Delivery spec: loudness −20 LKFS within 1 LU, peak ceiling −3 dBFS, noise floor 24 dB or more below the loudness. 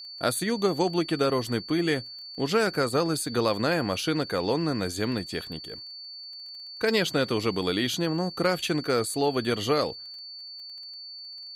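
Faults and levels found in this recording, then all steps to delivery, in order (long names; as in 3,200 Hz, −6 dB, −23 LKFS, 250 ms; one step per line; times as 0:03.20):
crackle rate 21 per second; interfering tone 4,500 Hz; level of the tone −39 dBFS; integrated loudness −26.5 LKFS; sample peak −10.0 dBFS; target loudness −20.0 LKFS
→ click removal
notch filter 4,500 Hz, Q 30
level +6.5 dB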